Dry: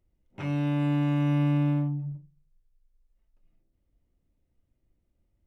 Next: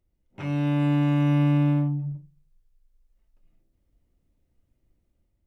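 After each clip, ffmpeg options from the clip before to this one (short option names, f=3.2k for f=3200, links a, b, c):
-af "dynaudnorm=f=140:g=7:m=5dB,volume=-1.5dB"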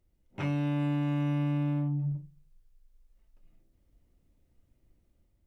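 -af "acompressor=threshold=-29dB:ratio=6,volume=2dB"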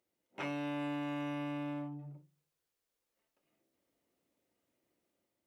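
-af "highpass=370,volume=-1dB"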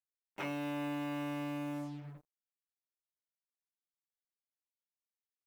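-af "acrusher=bits=8:mix=0:aa=0.5"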